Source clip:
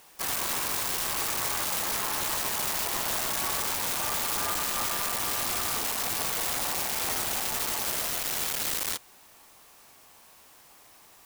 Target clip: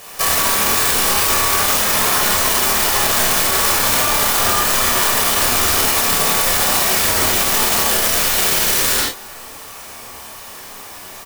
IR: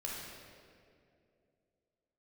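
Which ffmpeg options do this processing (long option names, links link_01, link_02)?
-filter_complex "[0:a]asplit=2[link_01][link_02];[link_02]adelay=29,volume=-5.5dB[link_03];[link_01][link_03]amix=inputs=2:normalize=0[link_04];[1:a]atrim=start_sample=2205,atrim=end_sample=6615[link_05];[link_04][link_05]afir=irnorm=-1:irlink=0,alimiter=level_in=25dB:limit=-1dB:release=50:level=0:latency=1,volume=-5dB"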